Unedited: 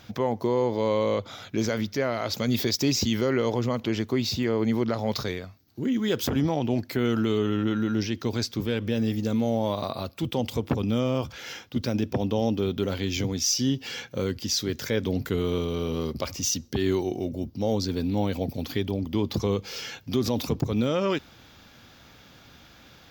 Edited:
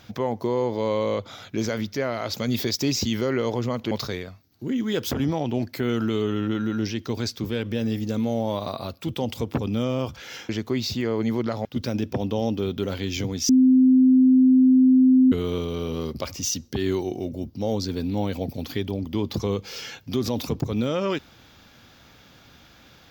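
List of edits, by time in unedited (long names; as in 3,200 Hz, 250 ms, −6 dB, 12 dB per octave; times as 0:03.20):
0:03.91–0:05.07: move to 0:11.65
0:13.49–0:15.32: beep over 258 Hz −12 dBFS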